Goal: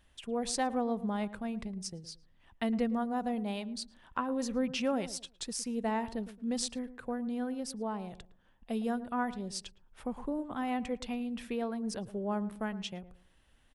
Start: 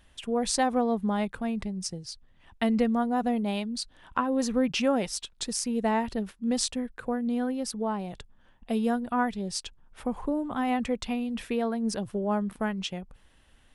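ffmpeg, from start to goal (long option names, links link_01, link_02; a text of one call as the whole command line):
ffmpeg -i in.wav -filter_complex "[0:a]asplit=2[link_01][link_02];[link_02]adelay=111,lowpass=frequency=970:poles=1,volume=-13.5dB,asplit=2[link_03][link_04];[link_04]adelay=111,lowpass=frequency=970:poles=1,volume=0.29,asplit=2[link_05][link_06];[link_06]adelay=111,lowpass=frequency=970:poles=1,volume=0.29[link_07];[link_01][link_03][link_05][link_07]amix=inputs=4:normalize=0,volume=-6.5dB" out.wav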